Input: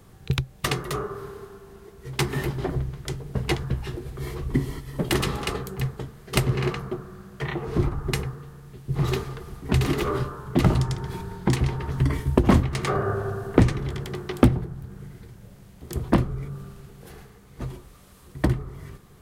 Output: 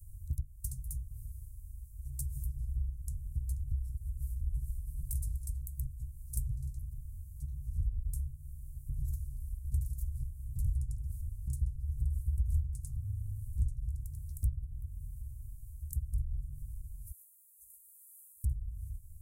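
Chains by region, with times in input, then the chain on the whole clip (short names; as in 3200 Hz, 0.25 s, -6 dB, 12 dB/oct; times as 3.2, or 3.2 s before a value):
17.11–18.44 inverse Chebyshev high-pass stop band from 2800 Hz, stop band 50 dB + high shelf 12000 Hz +8 dB
whole clip: inverse Chebyshev band-stop 250–3100 Hz, stop band 60 dB; high shelf 2200 Hz -7.5 dB; compressor 2:1, threshold -48 dBFS; gain +9 dB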